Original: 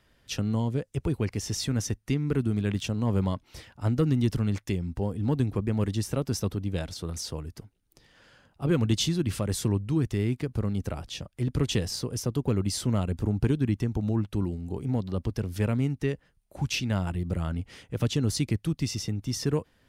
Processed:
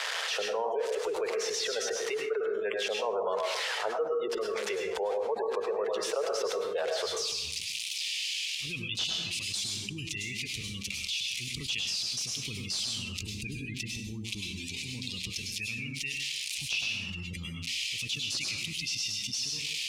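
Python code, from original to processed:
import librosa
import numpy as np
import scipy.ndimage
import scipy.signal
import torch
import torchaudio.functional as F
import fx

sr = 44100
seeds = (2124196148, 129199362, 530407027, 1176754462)

y = x + 0.5 * 10.0 ** (-23.0 / 20.0) * np.diff(np.sign(x), prepend=np.sign(x[:1]))
y = fx.recorder_agc(y, sr, target_db=-22.0, rise_db_per_s=23.0, max_gain_db=30)
y = fx.spec_gate(y, sr, threshold_db=-30, keep='strong')
y = fx.ellip_highpass(y, sr, hz=fx.steps((0.0, 440.0), (7.05, 2400.0)), order=4, stop_db=40)
y = np.clip(y, -10.0 ** (-20.5 / 20.0), 10.0 ** (-20.5 / 20.0))
y = fx.spacing_loss(y, sr, db_at_10k=30)
y = fx.rev_plate(y, sr, seeds[0], rt60_s=0.57, hf_ratio=0.7, predelay_ms=90, drr_db=3.0)
y = fx.env_flatten(y, sr, amount_pct=70)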